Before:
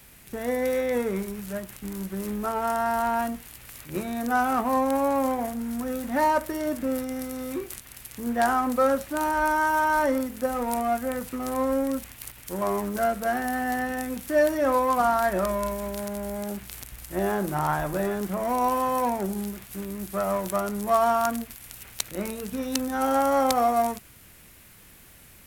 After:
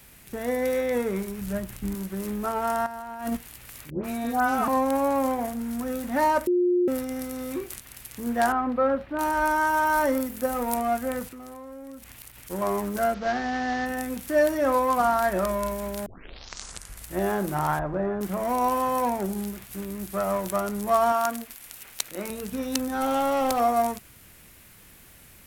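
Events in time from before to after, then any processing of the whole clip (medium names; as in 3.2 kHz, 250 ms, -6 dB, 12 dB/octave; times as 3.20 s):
1.41–1.95 s: bass shelf 180 Hz +11 dB
2.86–3.37 s: compressor with a negative ratio -31 dBFS, ratio -0.5
3.90–4.68 s: phase dispersion highs, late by 141 ms, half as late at 1.3 kHz
6.47–6.88 s: bleep 356 Hz -18.5 dBFS
8.52–9.19 s: distance through air 380 m
9.85–10.76 s: treble shelf 12 kHz +9 dB
11.27–12.50 s: compression 5:1, threshold -40 dBFS
13.14–13.86 s: CVSD coder 32 kbps
16.06 s: tape start 1.07 s
17.79–18.21 s: low-pass 1.4 kHz
21.12–22.30 s: peaking EQ 73 Hz -14.5 dB 2.3 oct
22.86–23.60 s: overload inside the chain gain 20.5 dB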